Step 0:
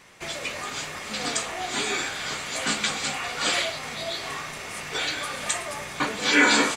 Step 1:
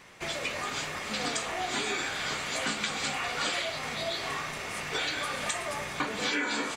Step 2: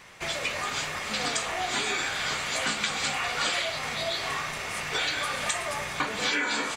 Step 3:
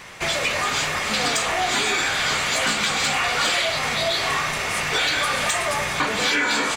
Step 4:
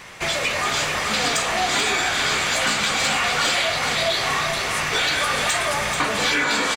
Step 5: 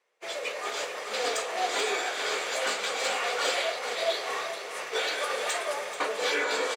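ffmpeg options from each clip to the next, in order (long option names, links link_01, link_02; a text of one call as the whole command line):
ffmpeg -i in.wav -af "equalizer=frequency=10000:width=0.5:gain=-4,acompressor=threshold=-27dB:ratio=10" out.wav
ffmpeg -i in.wav -af "equalizer=frequency=290:width_type=o:width=1.6:gain=-5,volume=3.5dB" out.wav
ffmpeg -i in.wav -filter_complex "[0:a]asplit=2[link_01][link_02];[link_02]alimiter=limit=-21.5dB:level=0:latency=1:release=25,volume=-2.5dB[link_03];[link_01][link_03]amix=inputs=2:normalize=0,asoftclip=type=tanh:threshold=-18dB,volume=4.5dB" out.wav
ffmpeg -i in.wav -af "aecho=1:1:435:0.473" out.wav
ffmpeg -i in.wav -af "agate=range=-33dB:threshold=-15dB:ratio=3:detection=peak,highpass=frequency=460:width_type=q:width=3.8,volume=-4dB" out.wav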